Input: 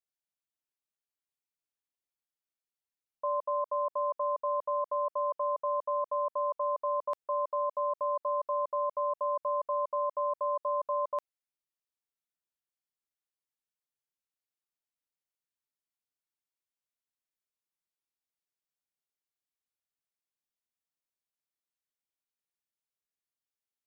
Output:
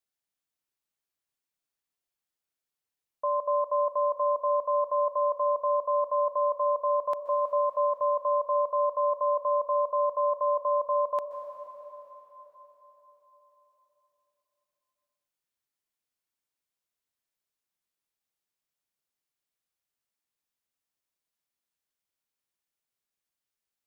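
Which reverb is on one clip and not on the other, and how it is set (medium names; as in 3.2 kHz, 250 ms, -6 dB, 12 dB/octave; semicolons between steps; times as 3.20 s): plate-style reverb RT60 4.4 s, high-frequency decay 0.85×, pre-delay 115 ms, DRR 8 dB; trim +3.5 dB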